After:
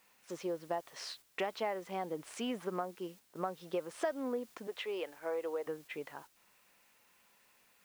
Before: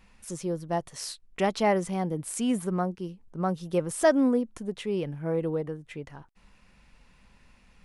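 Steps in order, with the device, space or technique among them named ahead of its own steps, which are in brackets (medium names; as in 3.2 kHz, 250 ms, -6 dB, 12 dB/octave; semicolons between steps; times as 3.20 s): 4.67–5.67 s: high-pass 490 Hz 12 dB/octave; baby monitor (band-pass 430–3500 Hz; compression 6:1, threshold -34 dBFS, peak gain reduction 16 dB; white noise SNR 23 dB; gate -54 dBFS, range -7 dB); trim +1 dB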